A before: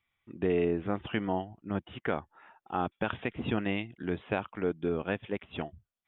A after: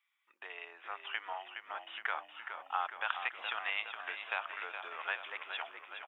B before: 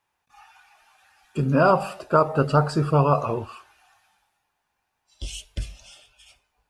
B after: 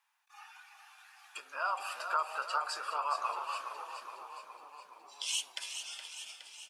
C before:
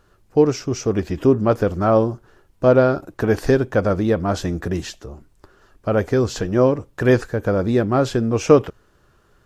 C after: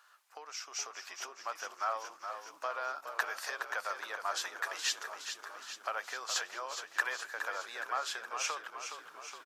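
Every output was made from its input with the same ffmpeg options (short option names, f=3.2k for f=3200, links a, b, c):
-filter_complex "[0:a]acompressor=threshold=-26dB:ratio=10,highpass=f=930:w=0.5412,highpass=f=930:w=1.3066,asplit=9[a][b][c][d][e][f][g][h][i];[b]adelay=417,afreqshift=-32,volume=-8.5dB[j];[c]adelay=834,afreqshift=-64,volume=-12.7dB[k];[d]adelay=1251,afreqshift=-96,volume=-16.8dB[l];[e]adelay=1668,afreqshift=-128,volume=-21dB[m];[f]adelay=2085,afreqshift=-160,volume=-25.1dB[n];[g]adelay=2502,afreqshift=-192,volume=-29.3dB[o];[h]adelay=2919,afreqshift=-224,volume=-33.4dB[p];[i]adelay=3336,afreqshift=-256,volume=-37.6dB[q];[a][j][k][l][m][n][o][p][q]amix=inputs=9:normalize=0,dynaudnorm=f=250:g=13:m=3.5dB"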